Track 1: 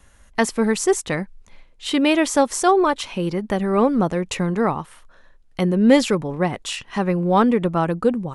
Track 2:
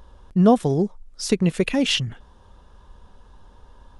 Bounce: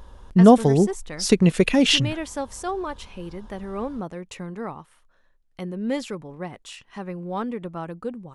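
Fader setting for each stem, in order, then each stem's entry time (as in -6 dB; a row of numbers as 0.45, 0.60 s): -12.5, +3.0 dB; 0.00, 0.00 s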